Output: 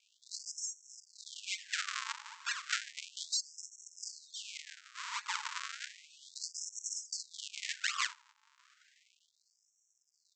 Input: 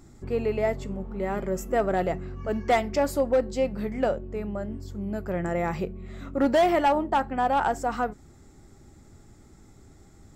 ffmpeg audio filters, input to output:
-af "afreqshift=-54,bandreject=f=60:t=h:w=6,bandreject=f=120:t=h:w=6,bandreject=f=180:t=h:w=6,bandreject=f=240:t=h:w=6,aresample=16000,acrusher=samples=37:mix=1:aa=0.000001:lfo=1:lforange=59.2:lforate=1.1,aresample=44100,afftfilt=real='re*gte(b*sr/1024,830*pow(5500/830,0.5+0.5*sin(2*PI*0.33*pts/sr)))':imag='im*gte(b*sr/1024,830*pow(5500/830,0.5+0.5*sin(2*PI*0.33*pts/sr)))':win_size=1024:overlap=0.75,volume=1.12"

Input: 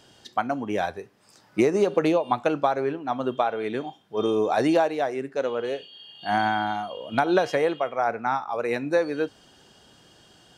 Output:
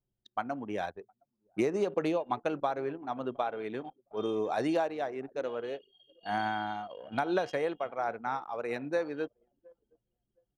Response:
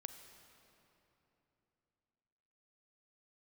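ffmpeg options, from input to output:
-af "aecho=1:1:713|1426|2139:0.0668|0.0287|0.0124,anlmdn=2.51,volume=0.376"

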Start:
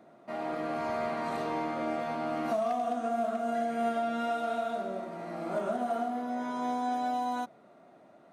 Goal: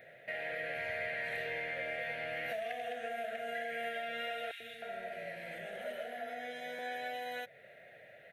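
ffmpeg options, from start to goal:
-filter_complex "[0:a]firequalizer=gain_entry='entry(120,0);entry(220,-18);entry(320,-20);entry(490,3);entry(1100,-27);entry(1700,14);entry(3200,6);entry(4900,-8);entry(7900,-7);entry(12000,6)':delay=0.05:min_phase=1,acompressor=threshold=0.00501:ratio=2,asettb=1/sr,asplit=3[s0][s1][s2];[s0]atrim=end=4.514[s3];[s1]atrim=start=4.51:end=6.79,asetpts=PTS-STARTPTS,afade=t=in:d=0.004:c=qsin,afade=t=out:st=2.276:d=0.004:c=qsin,acrossover=split=450|1800[s4][s5][s6];[s4]adelay=90[s7];[s5]adelay=310[s8];[s7][s8][s6]amix=inputs=3:normalize=0,atrim=end_sample=100548[s9];[s2]atrim=start=6.786[s10];[s3][s9]acrossfade=d=0.004:c1=hsin:c2=qsin[s11];[s11][s10]acrossfade=d=0.004:c1=qsin:c2=hsin,volume=1.58"

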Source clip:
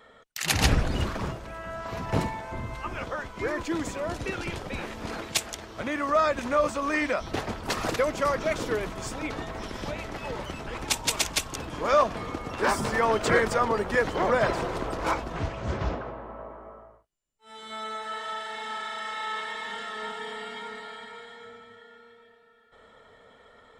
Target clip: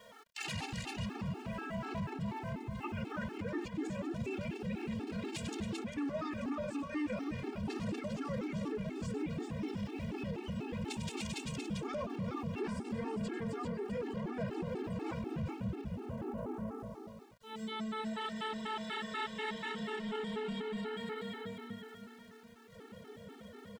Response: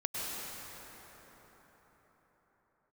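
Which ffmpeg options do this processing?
-filter_complex "[0:a]asubboost=boost=11:cutoff=230,acompressor=threshold=0.0447:ratio=6,highpass=150,equalizer=f=200:t=q:w=4:g=6,equalizer=f=400:t=q:w=4:g=5,equalizer=f=840:t=q:w=4:g=8,equalizer=f=2700:t=q:w=4:g=6,equalizer=f=6200:t=q:w=4:g=-4,lowpass=f=9200:w=0.5412,lowpass=f=9200:w=1.3066,asplit=2[s0][s1];[s1]aecho=0:1:97|279|394:0.251|0.112|0.422[s2];[s0][s2]amix=inputs=2:normalize=0,asoftclip=type=tanh:threshold=0.0794,bandreject=f=60:t=h:w=6,bandreject=f=120:t=h:w=6,bandreject=f=180:t=h:w=6,bandreject=f=240:t=h:w=6,aeval=exprs='val(0)*gte(abs(val(0)),0.00168)':c=same,alimiter=level_in=1.78:limit=0.0631:level=0:latency=1:release=21,volume=0.562,afftfilt=real='re*gt(sin(2*PI*4.1*pts/sr)*(1-2*mod(floor(b*sr/1024/230),2)),0)':imag='im*gt(sin(2*PI*4.1*pts/sr)*(1-2*mod(floor(b*sr/1024/230),2)),0)':win_size=1024:overlap=0.75"

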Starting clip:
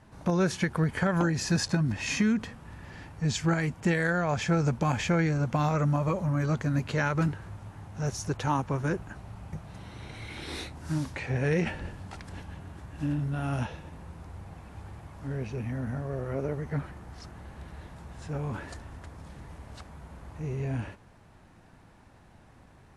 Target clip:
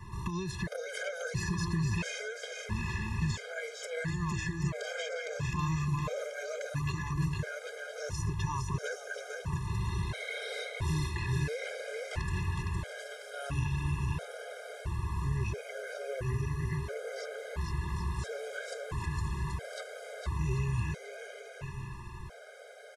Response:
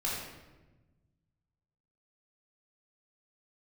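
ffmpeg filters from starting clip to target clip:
-filter_complex "[0:a]aecho=1:1:1.9:0.93,alimiter=limit=0.0891:level=0:latency=1:release=109,acrossover=split=93|2100[s0][s1][s2];[s0]acompressor=threshold=0.00447:ratio=4[s3];[s1]acompressor=threshold=0.00708:ratio=4[s4];[s2]acompressor=threshold=0.00282:ratio=4[s5];[s3][s4][s5]amix=inputs=3:normalize=0,aecho=1:1:460|782|1007|1165|1276:0.631|0.398|0.251|0.158|0.1,afftfilt=real='re*gt(sin(2*PI*0.74*pts/sr)*(1-2*mod(floor(b*sr/1024/410),2)),0)':imag='im*gt(sin(2*PI*0.74*pts/sr)*(1-2*mod(floor(b*sr/1024/410),2)),0)':win_size=1024:overlap=0.75,volume=2.51"

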